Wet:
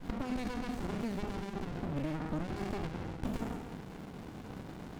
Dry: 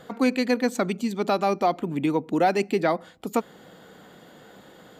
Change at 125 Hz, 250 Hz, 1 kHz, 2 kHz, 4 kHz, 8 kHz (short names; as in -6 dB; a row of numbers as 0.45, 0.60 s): -3.0, -11.0, -17.0, -14.0, -13.0, -14.0 dB